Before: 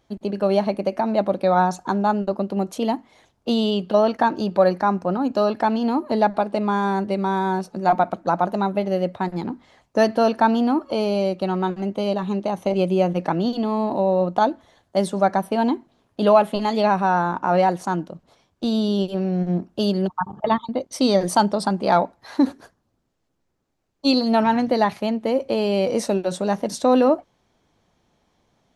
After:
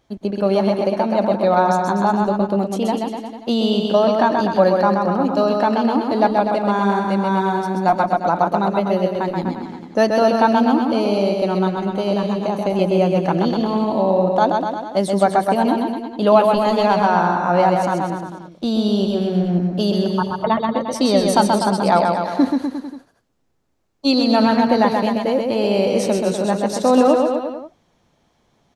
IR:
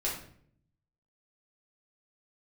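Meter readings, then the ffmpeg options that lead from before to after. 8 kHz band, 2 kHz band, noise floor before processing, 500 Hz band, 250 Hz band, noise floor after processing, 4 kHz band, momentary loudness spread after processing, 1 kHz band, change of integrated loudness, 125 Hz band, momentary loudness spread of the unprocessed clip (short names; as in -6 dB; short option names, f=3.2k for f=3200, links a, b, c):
+3.5 dB, +3.5 dB, -70 dBFS, +3.5 dB, +4.0 dB, -62 dBFS, +3.5 dB, 7 LU, +3.5 dB, +3.5 dB, +4.0 dB, 7 LU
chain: -af "aecho=1:1:130|247|352.3|447.1|532.4:0.631|0.398|0.251|0.158|0.1,volume=1.5dB"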